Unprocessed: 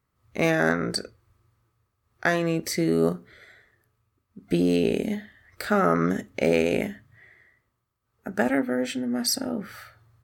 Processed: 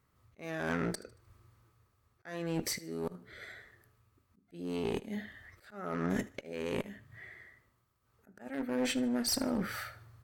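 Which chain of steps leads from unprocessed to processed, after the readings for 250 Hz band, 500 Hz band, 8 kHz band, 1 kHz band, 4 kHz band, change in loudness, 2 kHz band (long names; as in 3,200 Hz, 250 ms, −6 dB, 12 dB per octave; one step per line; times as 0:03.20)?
−10.5 dB, −13.5 dB, −6.5 dB, −13.0 dB, −7.5 dB, −11.0 dB, −12.5 dB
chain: reversed playback
downward compressor 12 to 1, threshold −30 dBFS, peak gain reduction 14.5 dB
reversed playback
volume swells 361 ms
asymmetric clip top −34.5 dBFS
feedback echo with a high-pass in the loop 76 ms, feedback 40%, level −19 dB
level +3 dB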